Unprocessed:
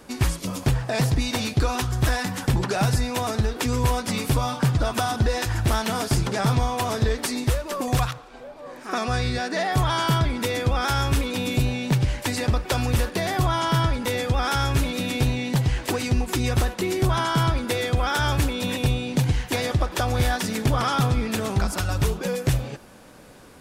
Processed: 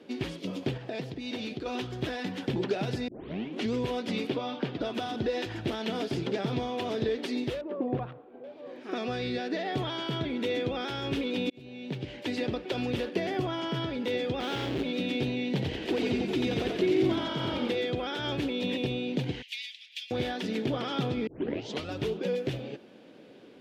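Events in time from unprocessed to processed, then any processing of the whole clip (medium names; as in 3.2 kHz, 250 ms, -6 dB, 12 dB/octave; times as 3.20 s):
0.77–1.66 s: compression, threshold -26 dBFS
3.08 s: tape start 0.65 s
4.27–4.81 s: three-band isolator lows -13 dB, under 180 Hz, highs -14 dB, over 5.1 kHz
7.61–8.44 s: low-pass 1.1 kHz
10.19–10.75 s: band-stop 4.9 kHz, Q 11
11.50–12.38 s: fade in
13.13–13.77 s: peaking EQ 3.8 kHz -9.5 dB 0.21 oct
14.40–14.83 s: square wave that keeps the level
15.46–17.75 s: frequency-shifting echo 89 ms, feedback 56%, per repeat -47 Hz, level -3 dB
18.47–18.89 s: band-stop 1.5 kHz
19.42–20.11 s: steep high-pass 2.2 kHz 48 dB/octave
21.27 s: tape start 0.63 s
whole clip: high-pass 300 Hz 12 dB/octave; peak limiter -16.5 dBFS; FFT filter 380 Hz 0 dB, 1.1 kHz -17 dB, 3.2 kHz -5 dB, 8.7 kHz -28 dB; trim +2.5 dB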